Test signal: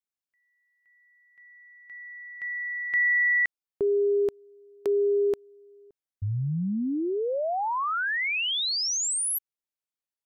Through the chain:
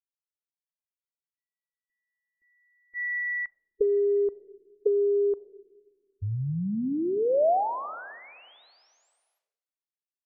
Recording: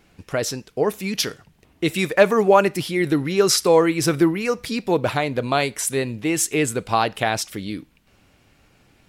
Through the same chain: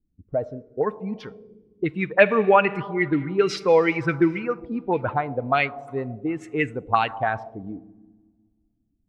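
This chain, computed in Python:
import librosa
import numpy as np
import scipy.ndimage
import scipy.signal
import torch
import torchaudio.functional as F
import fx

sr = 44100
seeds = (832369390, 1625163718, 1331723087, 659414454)

y = fx.bin_expand(x, sr, power=1.5)
y = fx.rev_schroeder(y, sr, rt60_s=2.0, comb_ms=28, drr_db=15.0)
y = fx.envelope_lowpass(y, sr, base_hz=300.0, top_hz=2500.0, q=2.7, full_db=-17.5, direction='up')
y = y * librosa.db_to_amplitude(-1.0)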